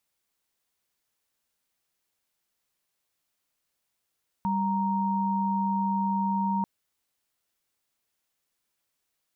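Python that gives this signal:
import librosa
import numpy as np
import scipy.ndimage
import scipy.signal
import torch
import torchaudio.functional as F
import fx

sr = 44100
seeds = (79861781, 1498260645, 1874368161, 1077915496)

y = fx.chord(sr, length_s=2.19, notes=(55, 82), wave='sine', level_db=-26.5)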